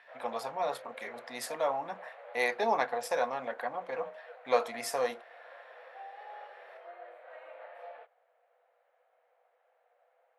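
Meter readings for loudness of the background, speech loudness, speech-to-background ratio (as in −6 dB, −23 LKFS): −49.5 LKFS, −34.0 LKFS, 15.5 dB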